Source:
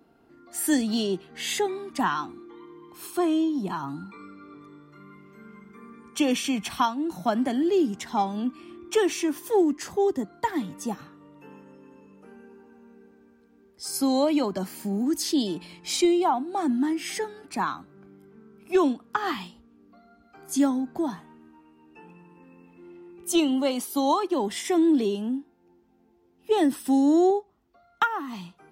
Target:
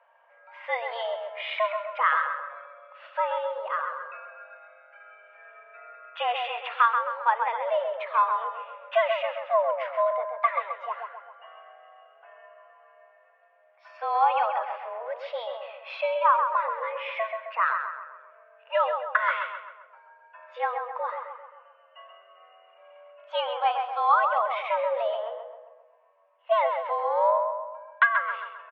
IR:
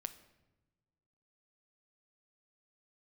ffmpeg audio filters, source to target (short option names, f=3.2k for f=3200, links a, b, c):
-filter_complex "[0:a]asplit=2[a][b];[b]adelay=132,lowpass=f=2.1k:p=1,volume=-5dB,asplit=2[c][d];[d]adelay=132,lowpass=f=2.1k:p=1,volume=0.52,asplit=2[e][f];[f]adelay=132,lowpass=f=2.1k:p=1,volume=0.52,asplit=2[g][h];[h]adelay=132,lowpass=f=2.1k:p=1,volume=0.52,asplit=2[i][j];[j]adelay=132,lowpass=f=2.1k:p=1,volume=0.52,asplit=2[k][l];[l]adelay=132,lowpass=f=2.1k:p=1,volume=0.52,asplit=2[m][n];[n]adelay=132,lowpass=f=2.1k:p=1,volume=0.52[o];[a][c][e][g][i][k][m][o]amix=inputs=8:normalize=0,asplit=2[p][q];[1:a]atrim=start_sample=2205[r];[q][r]afir=irnorm=-1:irlink=0,volume=-3.5dB[s];[p][s]amix=inputs=2:normalize=0,highpass=f=460:t=q:w=0.5412,highpass=f=460:t=q:w=1.307,lowpass=f=2.6k:t=q:w=0.5176,lowpass=f=2.6k:t=q:w=0.7071,lowpass=f=2.6k:t=q:w=1.932,afreqshift=230"